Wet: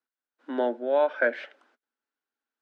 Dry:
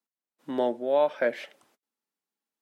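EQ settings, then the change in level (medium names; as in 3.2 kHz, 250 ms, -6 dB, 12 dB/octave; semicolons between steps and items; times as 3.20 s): elliptic high-pass 240 Hz; low-pass 3.9 kHz 12 dB/octave; peaking EQ 1.5 kHz +11.5 dB 0.32 oct; 0.0 dB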